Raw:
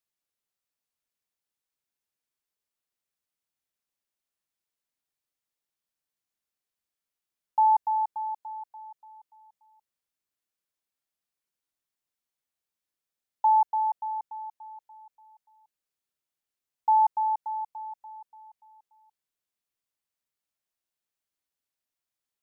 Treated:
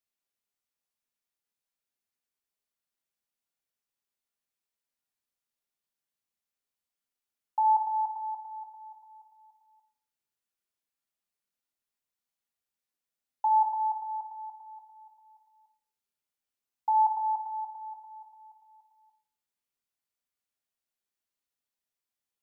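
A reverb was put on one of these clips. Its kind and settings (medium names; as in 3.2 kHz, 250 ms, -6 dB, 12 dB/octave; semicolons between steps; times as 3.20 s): two-slope reverb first 0.49 s, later 1.7 s, from -28 dB, DRR 3.5 dB; trim -3.5 dB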